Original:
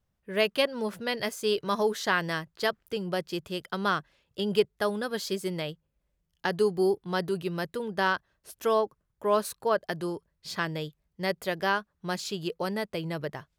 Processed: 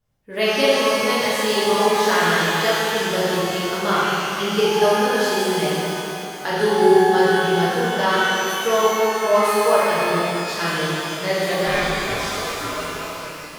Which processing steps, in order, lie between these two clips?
fade out at the end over 1.39 s; 11.67–13.21 s: ring modulator 830 Hz; pitch-shifted reverb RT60 2.9 s, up +12 st, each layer -8 dB, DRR -9.5 dB

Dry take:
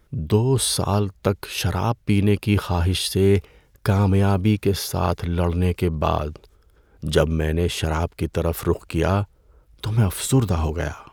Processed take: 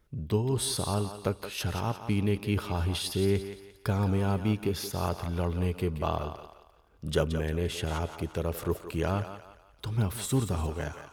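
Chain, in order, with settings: thinning echo 174 ms, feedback 41%, high-pass 400 Hz, level -9 dB; on a send at -22 dB: reverberation RT60 0.55 s, pre-delay 5 ms; on the sum: trim -9 dB

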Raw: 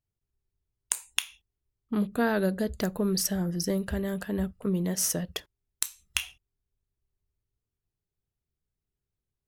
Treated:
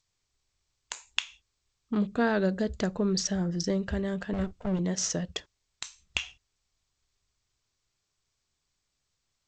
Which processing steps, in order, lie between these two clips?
4.33–4.79 s: comb filter that takes the minimum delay 1.4 ms; G.722 64 kbps 16 kHz

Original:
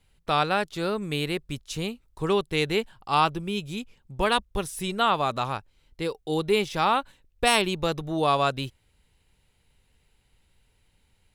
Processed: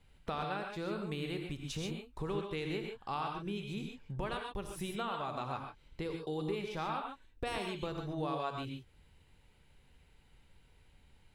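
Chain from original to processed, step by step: treble shelf 4.1 kHz -9.5 dB; compression 4:1, threshold -40 dBFS, peak gain reduction 19 dB; gated-style reverb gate 160 ms rising, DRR 2.5 dB; trim +1 dB

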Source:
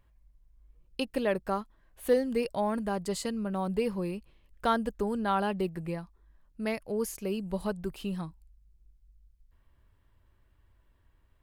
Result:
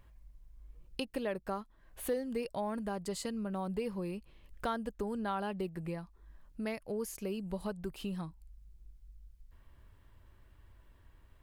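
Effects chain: compression 2:1, threshold -49 dBFS, peak gain reduction 16 dB; trim +5.5 dB

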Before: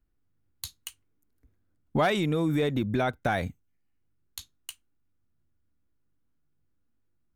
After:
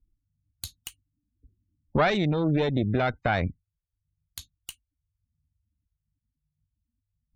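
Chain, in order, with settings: bass shelf 120 Hz +7.5 dB; spectral gate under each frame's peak -30 dB strong; Chebyshev shaper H 2 -6 dB, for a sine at -14 dBFS

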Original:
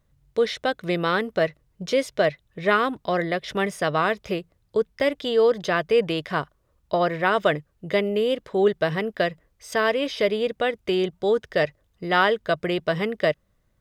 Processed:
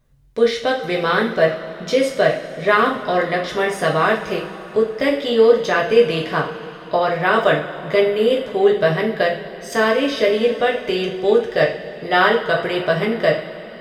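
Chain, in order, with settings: two-slope reverb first 0.41 s, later 4 s, from -18 dB, DRR -2 dB; trim +1.5 dB

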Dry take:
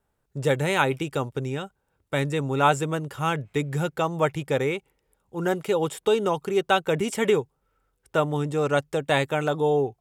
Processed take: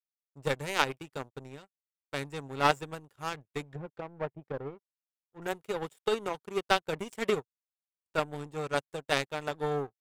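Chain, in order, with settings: 3.70–5.42 s: low-pass that closes with the level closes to 710 Hz, closed at -22.5 dBFS; power-law waveshaper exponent 2; trim +1 dB

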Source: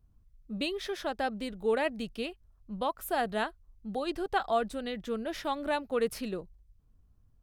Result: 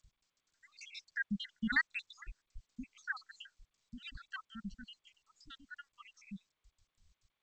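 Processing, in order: random holes in the spectrogram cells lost 84%; Doppler pass-by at 2.20 s, 9 m/s, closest 3.3 m; elliptic band-stop 200–1500 Hz, stop band 70 dB; treble shelf 3.9 kHz -9.5 dB; trim +16.5 dB; G.722 64 kbps 16 kHz

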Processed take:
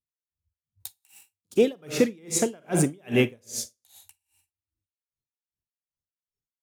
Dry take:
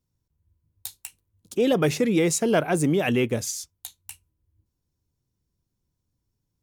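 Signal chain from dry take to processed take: spectral noise reduction 22 dB; Schroeder reverb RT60 0.63 s, DRR 8.5 dB; logarithmic tremolo 2.5 Hz, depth 37 dB; trim +4 dB

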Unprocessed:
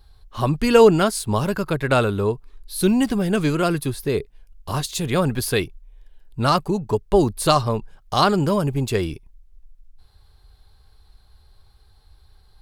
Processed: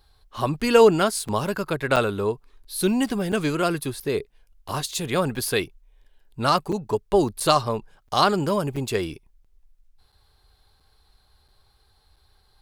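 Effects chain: bass shelf 170 Hz -9.5 dB; crackling interface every 0.68 s, samples 256, zero, from 0.60 s; trim -1 dB

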